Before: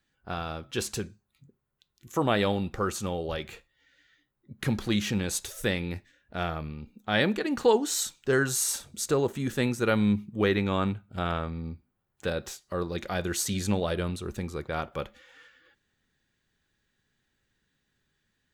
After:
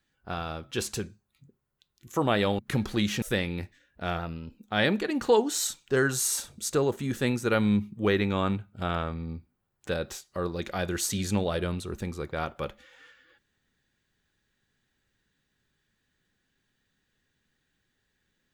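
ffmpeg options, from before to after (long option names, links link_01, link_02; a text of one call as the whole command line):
ffmpeg -i in.wav -filter_complex "[0:a]asplit=5[link_01][link_02][link_03][link_04][link_05];[link_01]atrim=end=2.592[link_06];[link_02]atrim=start=4.518:end=5.152[link_07];[link_03]atrim=start=5.548:end=6.524[link_08];[link_04]atrim=start=6.52:end=6.94,asetpts=PTS-STARTPTS,asetrate=47628,aresample=44100[link_09];[link_05]atrim=start=6.936[link_10];[link_06][link_07]acrossfade=duration=0.004:curve1=hsin:curve2=hsin[link_11];[link_11][link_08]acrossfade=duration=0.004:curve1=hsin:curve2=hsin[link_12];[link_12][link_09]acrossfade=duration=0.004:curve1=hsin:curve2=hsin[link_13];[link_13][link_10]acrossfade=duration=0.004:curve1=hsin:curve2=hsin" out.wav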